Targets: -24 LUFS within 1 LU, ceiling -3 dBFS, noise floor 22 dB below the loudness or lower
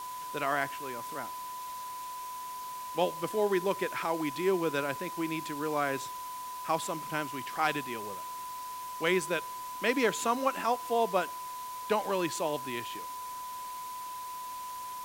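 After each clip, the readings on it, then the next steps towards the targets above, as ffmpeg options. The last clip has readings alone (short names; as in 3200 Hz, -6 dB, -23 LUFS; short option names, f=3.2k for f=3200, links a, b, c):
steady tone 1000 Hz; tone level -38 dBFS; noise floor -41 dBFS; noise floor target -55 dBFS; loudness -33.0 LUFS; peak -15.5 dBFS; loudness target -24.0 LUFS
-> -af "bandreject=f=1k:w=30"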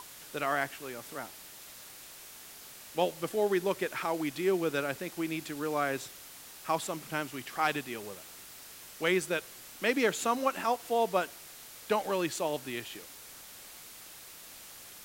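steady tone none; noise floor -50 dBFS; noise floor target -55 dBFS
-> -af "afftdn=nr=6:nf=-50"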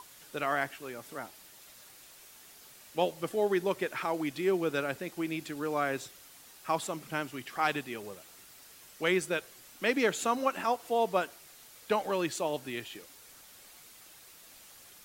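noise floor -55 dBFS; loudness -32.5 LUFS; peak -15.5 dBFS; loudness target -24.0 LUFS
-> -af "volume=8.5dB"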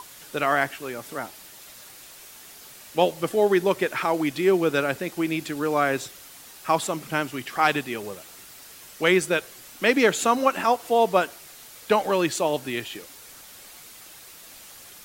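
loudness -24.0 LUFS; peak -7.0 dBFS; noise floor -46 dBFS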